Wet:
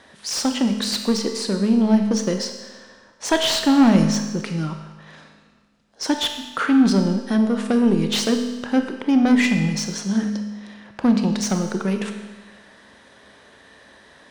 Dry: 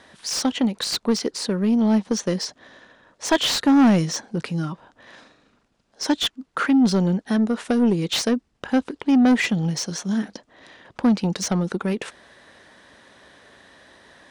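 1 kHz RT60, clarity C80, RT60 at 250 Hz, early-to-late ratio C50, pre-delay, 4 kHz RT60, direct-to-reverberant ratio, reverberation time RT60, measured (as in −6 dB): 1.3 s, 8.0 dB, 1.3 s, 7.0 dB, 24 ms, 1.3 s, 5.0 dB, 1.3 s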